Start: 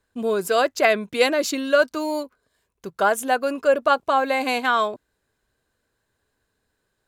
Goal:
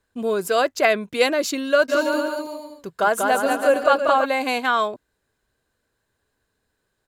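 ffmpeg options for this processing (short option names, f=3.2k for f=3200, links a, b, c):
-filter_complex "[0:a]asplit=3[a][b][c];[a]afade=t=out:st=1.88:d=0.02[d];[b]aecho=1:1:190|332.5|439.4|519.5|579.6:0.631|0.398|0.251|0.158|0.1,afade=t=in:st=1.88:d=0.02,afade=t=out:st=4.24:d=0.02[e];[c]afade=t=in:st=4.24:d=0.02[f];[d][e][f]amix=inputs=3:normalize=0"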